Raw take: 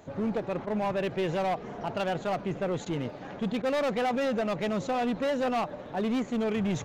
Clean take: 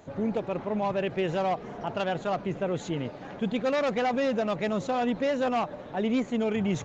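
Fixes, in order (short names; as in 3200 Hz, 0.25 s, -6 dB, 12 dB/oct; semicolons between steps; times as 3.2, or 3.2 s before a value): clip repair -24.5 dBFS; de-click; interpolate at 0.66/2.85/3.62, 11 ms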